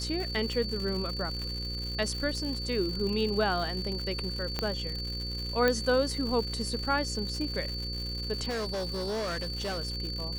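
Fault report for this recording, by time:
buzz 60 Hz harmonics 9 -37 dBFS
crackle 190/s -35 dBFS
tone 4500 Hz -36 dBFS
4.59 pop -15 dBFS
5.68 pop -12 dBFS
8.49–9.79 clipped -29.5 dBFS

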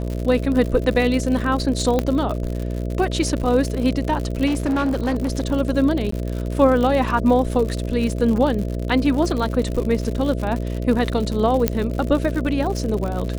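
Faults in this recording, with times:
buzz 60 Hz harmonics 11 -25 dBFS
crackle 97/s -25 dBFS
1.99 pop -7 dBFS
4.46–5.47 clipped -17 dBFS
6.11–6.12 gap 14 ms
11.68 pop -3 dBFS

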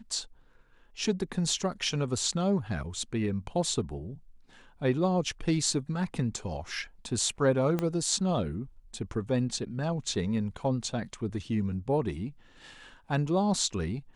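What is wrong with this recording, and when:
7.79 pop -16 dBFS

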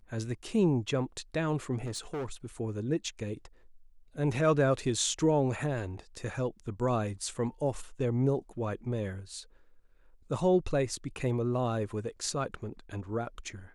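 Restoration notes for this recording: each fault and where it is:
1.85–2.46 clipped -32 dBFS

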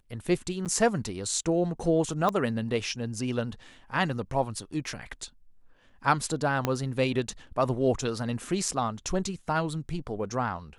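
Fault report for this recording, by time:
0.65–0.66 gap 8.2 ms
2.29 pop -15 dBFS
6.65 pop -11 dBFS

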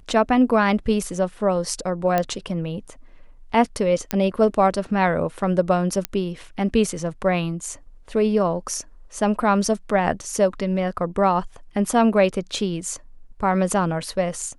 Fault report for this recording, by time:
2.18 pop -8 dBFS
4.11 pop -5 dBFS
6.05 pop -7 dBFS

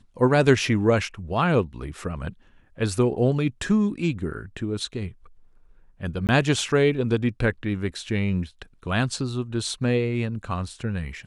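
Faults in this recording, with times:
6.27–6.29 gap 18 ms

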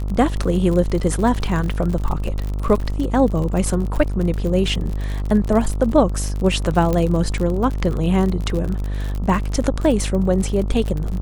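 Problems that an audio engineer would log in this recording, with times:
buzz 50 Hz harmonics 27 -23 dBFS
crackle 52/s -24 dBFS
2.8 gap 3.2 ms
6.93 pop -9 dBFS

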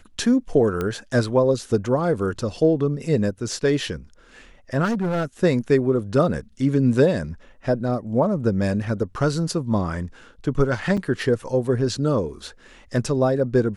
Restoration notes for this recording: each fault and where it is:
0.81 pop -13 dBFS
4.84–5.25 clipped -19.5 dBFS
10.97–10.98 gap 5.7 ms

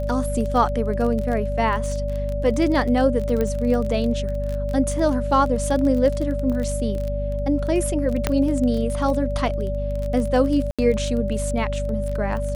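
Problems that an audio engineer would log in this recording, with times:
crackle 25/s -26 dBFS
hum 50 Hz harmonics 5 -26 dBFS
tone 580 Hz -27 dBFS
3.41 pop -12 dBFS
8.27 pop -5 dBFS
10.71–10.79 gap 76 ms

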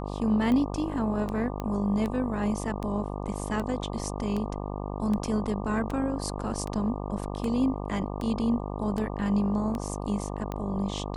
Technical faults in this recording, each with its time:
buzz 50 Hz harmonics 24 -34 dBFS
tick 78 rpm -20 dBFS
1.6 pop -20 dBFS

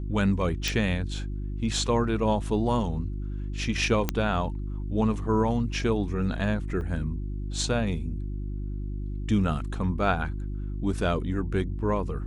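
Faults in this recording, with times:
hum 50 Hz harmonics 7 -32 dBFS
0.68 pop
4.09 pop -10 dBFS
6.81 gap 2.9 ms

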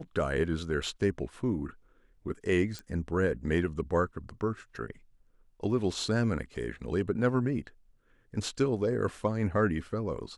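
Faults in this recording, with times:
2.79 pop -24 dBFS

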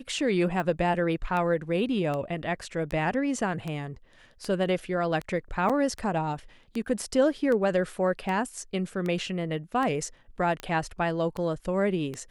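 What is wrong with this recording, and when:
tick 78 rpm -20 dBFS
5.69–5.7 gap 6.5 ms

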